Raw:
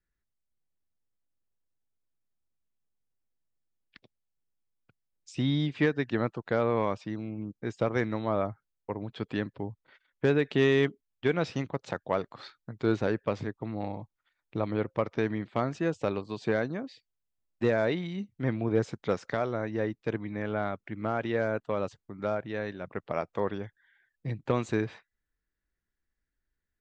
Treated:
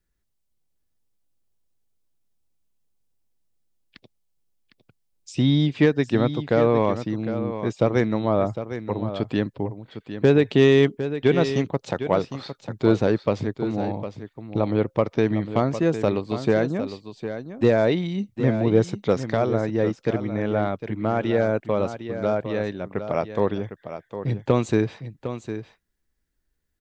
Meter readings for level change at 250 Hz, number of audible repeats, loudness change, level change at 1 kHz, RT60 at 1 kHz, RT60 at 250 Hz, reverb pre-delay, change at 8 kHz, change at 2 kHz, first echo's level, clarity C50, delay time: +8.5 dB, 1, +8.0 dB, +6.0 dB, none, none, none, n/a, +3.5 dB, -10.5 dB, none, 0.756 s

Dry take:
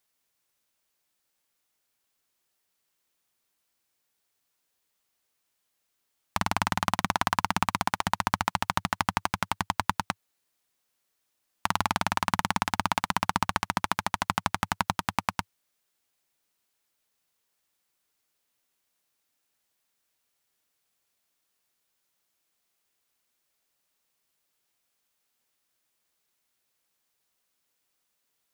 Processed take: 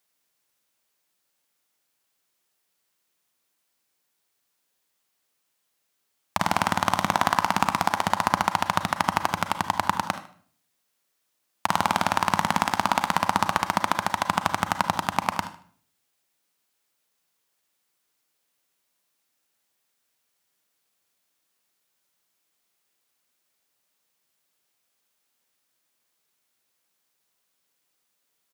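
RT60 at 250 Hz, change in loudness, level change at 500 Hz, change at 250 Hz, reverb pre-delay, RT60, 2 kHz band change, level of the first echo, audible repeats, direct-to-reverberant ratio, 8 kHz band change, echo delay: 0.65 s, +4.0 dB, +7.0 dB, +3.5 dB, 32 ms, 0.50 s, +3.0 dB, -15.5 dB, 2, 9.0 dB, +2.5 dB, 76 ms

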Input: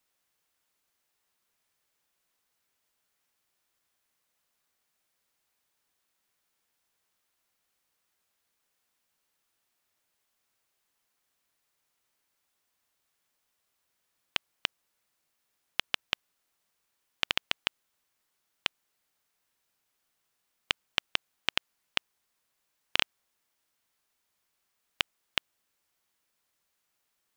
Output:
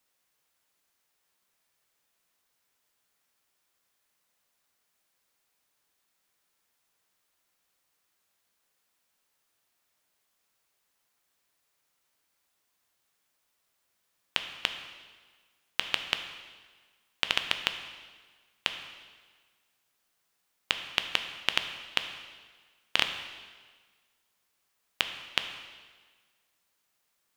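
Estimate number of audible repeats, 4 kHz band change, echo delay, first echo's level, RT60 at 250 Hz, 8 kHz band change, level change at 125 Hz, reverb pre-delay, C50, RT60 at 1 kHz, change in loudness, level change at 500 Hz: none, +2.5 dB, none, none, 1.5 s, +2.5 dB, +1.0 dB, 4 ms, 8.5 dB, 1.5 s, +1.5 dB, +2.0 dB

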